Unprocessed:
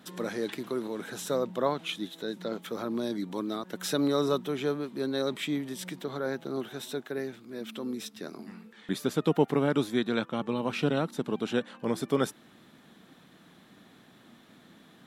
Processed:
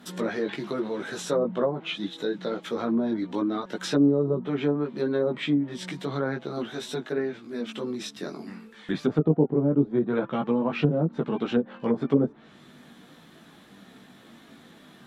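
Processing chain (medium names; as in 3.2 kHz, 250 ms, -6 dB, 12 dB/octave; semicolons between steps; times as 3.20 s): chorus voices 4, 0.17 Hz, delay 17 ms, depth 4.3 ms; low-pass that closes with the level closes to 440 Hz, closed at -25.5 dBFS; trim +8 dB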